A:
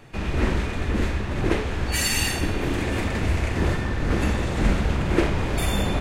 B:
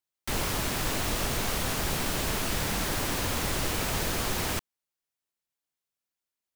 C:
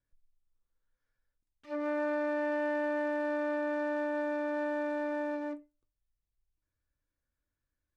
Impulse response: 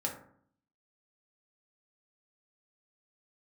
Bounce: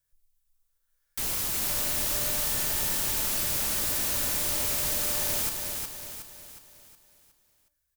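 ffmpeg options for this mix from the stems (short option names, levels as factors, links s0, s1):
-filter_complex "[1:a]adelay=900,volume=0.335,asplit=2[s0][s1];[s1]volume=0.596[s2];[2:a]equalizer=f=290:t=o:w=0.69:g=-13.5,acompressor=threshold=0.01:ratio=6,volume=1.12,asplit=2[s3][s4];[s4]volume=0.282[s5];[s3]acompressor=threshold=0.00631:ratio=6,volume=1[s6];[s2][s5]amix=inputs=2:normalize=0,aecho=0:1:365|730|1095|1460|1825|2190:1|0.46|0.212|0.0973|0.0448|0.0206[s7];[s0][s6][s7]amix=inputs=3:normalize=0,crystalizer=i=3.5:c=0"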